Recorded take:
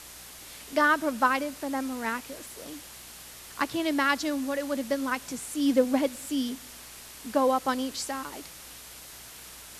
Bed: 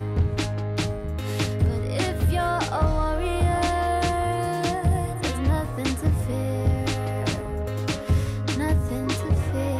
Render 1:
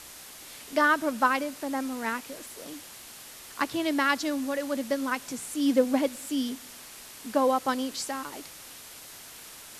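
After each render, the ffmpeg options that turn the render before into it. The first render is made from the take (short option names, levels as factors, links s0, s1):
-af "bandreject=f=60:t=h:w=4,bandreject=f=120:t=h:w=4,bandreject=f=180:t=h:w=4"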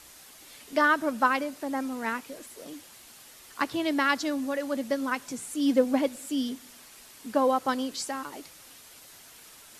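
-af "afftdn=nr=6:nf=-46"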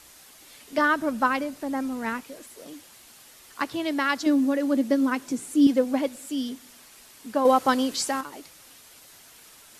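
-filter_complex "[0:a]asettb=1/sr,asplit=3[s0][s1][s2];[s0]atrim=end=0.784[s3];[s1]atrim=start=0.78:end=2.23,asetpts=PTS-STARTPTS,afade=t=in:d=0.004:c=qsin,afade=t=out:st=1.446:d=0.004:c=qsin,lowshelf=f=180:g=10.5[s4];[s2]atrim=start=2.226[s5];[s3][s4]acrossfade=d=0.004:c1=hsin:c2=qsin[s6];[s6][s5]acrossfade=d=0.004:c1=qsin:c2=hsin,asettb=1/sr,asplit=3[s7][s8][s9];[s7]atrim=end=4.264[s10];[s8]atrim=start=4.26:end=5.67,asetpts=PTS-STARTPTS,afade=t=in:d=0.004:c=qsin,afade=t=out:st=1.406:d=0.004:c=qsin,equalizer=f=300:w=1.3:g=10.5[s11];[s9]atrim=start=5.666[s12];[s10][s11]acrossfade=d=0.004:c1=hsin:c2=qsin[s13];[s13][s12]acrossfade=d=0.004:c1=qsin:c2=hsin,asettb=1/sr,asplit=3[s14][s15][s16];[s14]atrim=end=7.454[s17];[s15]atrim=start=7.45:end=8.21,asetpts=PTS-STARTPTS,afade=t=in:d=0.004:c=qsin,afade=t=out:st=0.756:d=0.004:c=qsin,acontrast=60[s18];[s16]atrim=start=8.206[s19];[s17][s18]acrossfade=d=0.004:c1=hsin:c2=qsin[s20];[s20][s19]acrossfade=d=0.004:c1=qsin:c2=hsin"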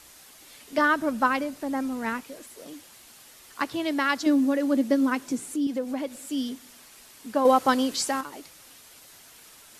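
-filter_complex "[0:a]asettb=1/sr,asplit=3[s0][s1][s2];[s0]atrim=end=5.544[s3];[s1]atrim=start=5.54:end=6.24,asetpts=PTS-STARTPTS,afade=t=in:d=0.004:c=qsin,afade=t=out:st=0.696:d=0.004:c=qsin,acompressor=threshold=0.0316:ratio=2:attack=3.2:release=140:knee=1:detection=peak[s4];[s2]atrim=start=6.236[s5];[s3][s4]acrossfade=d=0.004:c1=hsin:c2=qsin[s6];[s6][s5]acrossfade=d=0.004:c1=qsin:c2=hsin"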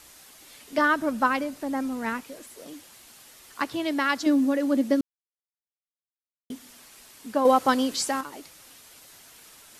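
-filter_complex "[0:a]asplit=3[s0][s1][s2];[s0]atrim=end=5.01,asetpts=PTS-STARTPTS,afade=t=out:st=5.006:d=0.004:c=hsin[s3];[s1]atrim=start=5.01:end=6.5,asetpts=PTS-STARTPTS,volume=0[s4];[s2]atrim=start=6.5,asetpts=PTS-STARTPTS,afade=t=in:d=0.004:c=hsin[s5];[s3][s4][s5]concat=n=3:v=0:a=1"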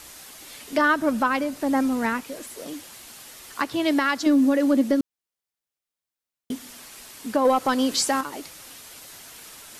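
-af "acontrast=75,alimiter=limit=0.266:level=0:latency=1:release=338"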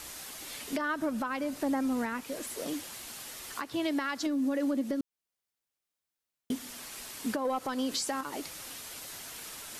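-af "acompressor=threshold=0.0708:ratio=6,alimiter=limit=0.075:level=0:latency=1:release=448"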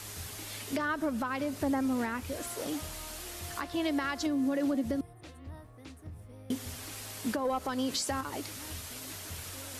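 -filter_complex "[1:a]volume=0.0668[s0];[0:a][s0]amix=inputs=2:normalize=0"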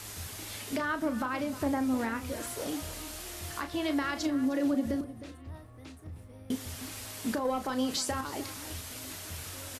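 -filter_complex "[0:a]asplit=2[s0][s1];[s1]adelay=35,volume=0.335[s2];[s0][s2]amix=inputs=2:normalize=0,asplit=2[s3][s4];[s4]adelay=309,volume=0.2,highshelf=f=4000:g=-6.95[s5];[s3][s5]amix=inputs=2:normalize=0"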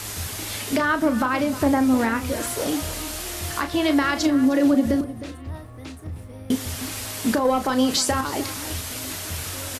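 -af "volume=3.35"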